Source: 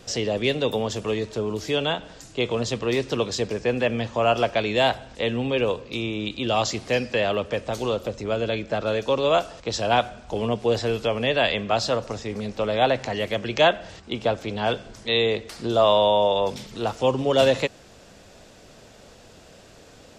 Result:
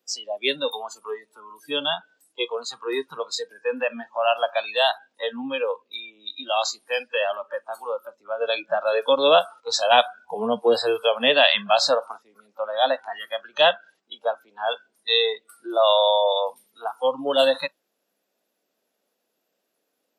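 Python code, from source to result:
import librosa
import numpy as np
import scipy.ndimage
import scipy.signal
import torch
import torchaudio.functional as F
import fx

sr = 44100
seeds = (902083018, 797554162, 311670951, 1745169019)

y = fx.edit(x, sr, fx.clip_gain(start_s=8.41, length_s=3.76, db=4.0), tone=tone)
y = fx.noise_reduce_blind(y, sr, reduce_db=27)
y = scipy.signal.sosfilt(scipy.signal.butter(4, 230.0, 'highpass', fs=sr, output='sos'), y)
y = fx.dynamic_eq(y, sr, hz=3600.0, q=1.8, threshold_db=-43.0, ratio=4.0, max_db=5)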